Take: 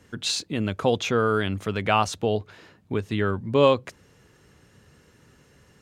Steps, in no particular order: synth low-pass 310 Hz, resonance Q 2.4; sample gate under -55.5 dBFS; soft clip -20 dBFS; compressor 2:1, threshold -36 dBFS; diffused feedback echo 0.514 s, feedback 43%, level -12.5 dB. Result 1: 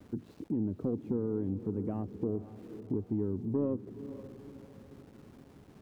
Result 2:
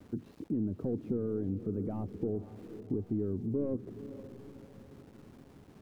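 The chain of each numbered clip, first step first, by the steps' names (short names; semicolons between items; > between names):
synth low-pass > sample gate > compressor > soft clip > diffused feedback echo; soft clip > synth low-pass > sample gate > compressor > diffused feedback echo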